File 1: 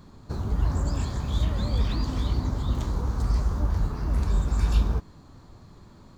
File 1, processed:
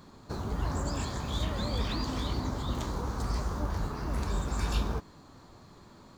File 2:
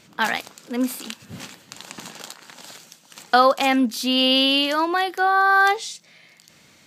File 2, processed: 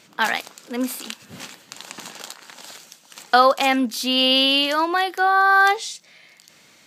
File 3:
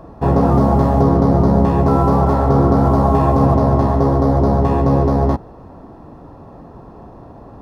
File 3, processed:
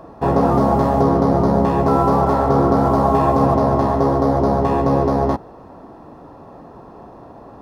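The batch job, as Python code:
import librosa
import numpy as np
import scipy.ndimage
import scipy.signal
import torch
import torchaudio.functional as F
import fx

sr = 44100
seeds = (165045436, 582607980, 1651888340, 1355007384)

y = fx.low_shelf(x, sr, hz=170.0, db=-11.5)
y = y * 10.0 ** (1.5 / 20.0)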